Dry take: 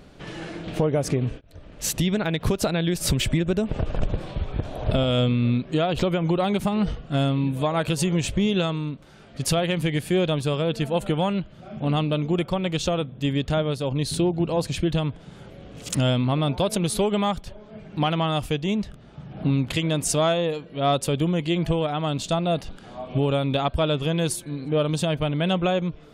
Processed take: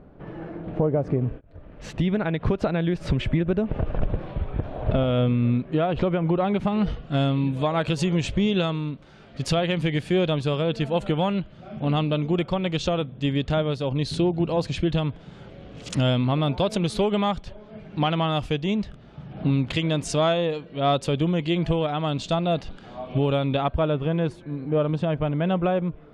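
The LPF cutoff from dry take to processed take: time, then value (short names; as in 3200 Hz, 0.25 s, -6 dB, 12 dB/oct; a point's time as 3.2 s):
1.05 s 1100 Hz
1.89 s 2100 Hz
6.46 s 2100 Hz
6.96 s 5000 Hz
23.32 s 5000 Hz
23.86 s 1800 Hz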